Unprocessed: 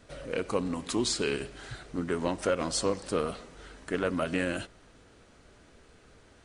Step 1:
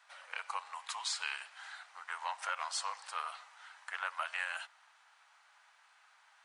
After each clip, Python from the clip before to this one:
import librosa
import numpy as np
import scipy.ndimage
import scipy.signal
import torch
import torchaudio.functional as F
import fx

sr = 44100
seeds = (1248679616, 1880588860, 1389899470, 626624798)

y = scipy.signal.sosfilt(scipy.signal.ellip(4, 1.0, 60, 840.0, 'highpass', fs=sr, output='sos'), x)
y = fx.high_shelf(y, sr, hz=2900.0, db=-8.5)
y = y * 10.0 ** (1.0 / 20.0)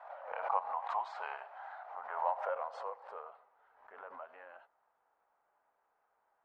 y = fx.filter_sweep_lowpass(x, sr, from_hz=690.0, to_hz=340.0, start_s=1.96, end_s=3.5, q=2.6)
y = fx.pre_swell(y, sr, db_per_s=78.0)
y = y * 10.0 ** (8.0 / 20.0)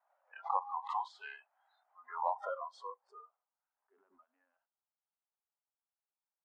y = fx.noise_reduce_blind(x, sr, reduce_db=28)
y = fx.peak_eq(y, sr, hz=140.0, db=-14.5, octaves=2.8)
y = y * 10.0 ** (2.0 / 20.0)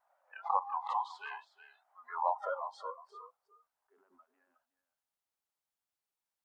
y = fx.vibrato(x, sr, rate_hz=7.2, depth_cents=36.0)
y = y + 10.0 ** (-14.0 / 20.0) * np.pad(y, (int(365 * sr / 1000.0), 0))[:len(y)]
y = y * 10.0 ** (2.5 / 20.0)